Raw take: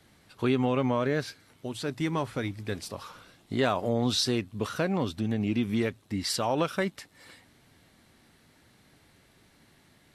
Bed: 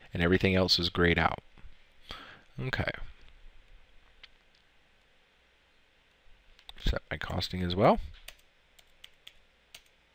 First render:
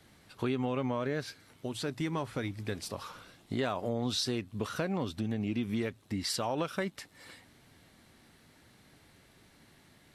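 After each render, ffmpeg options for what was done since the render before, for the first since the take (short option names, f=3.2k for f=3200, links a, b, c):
-af "acompressor=threshold=-33dB:ratio=2"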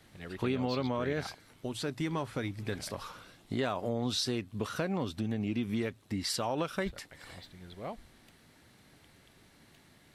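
-filter_complex "[1:a]volume=-18dB[a];[0:a][a]amix=inputs=2:normalize=0"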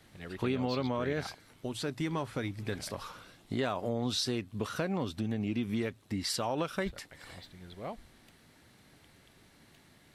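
-af anull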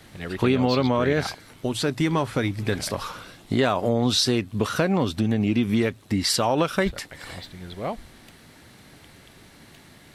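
-af "volume=11dB"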